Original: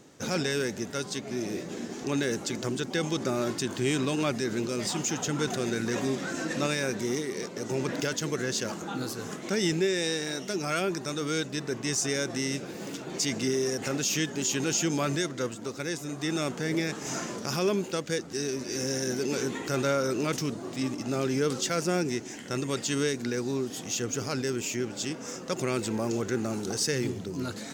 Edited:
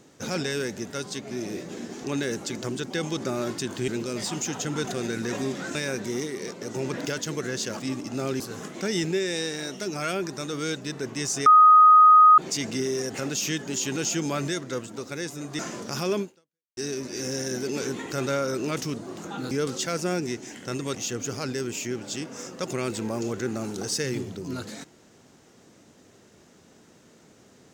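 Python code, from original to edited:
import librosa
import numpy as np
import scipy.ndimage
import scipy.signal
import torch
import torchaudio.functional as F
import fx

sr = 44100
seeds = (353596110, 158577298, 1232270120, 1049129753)

y = fx.edit(x, sr, fx.cut(start_s=3.88, length_s=0.63),
    fx.cut(start_s=6.38, length_s=0.32),
    fx.swap(start_s=8.75, length_s=0.33, other_s=20.74, other_length_s=0.6),
    fx.bleep(start_s=12.14, length_s=0.92, hz=1250.0, db=-10.0),
    fx.cut(start_s=16.27, length_s=0.88),
    fx.fade_out_span(start_s=17.77, length_s=0.56, curve='exp'),
    fx.cut(start_s=22.78, length_s=1.06), tone=tone)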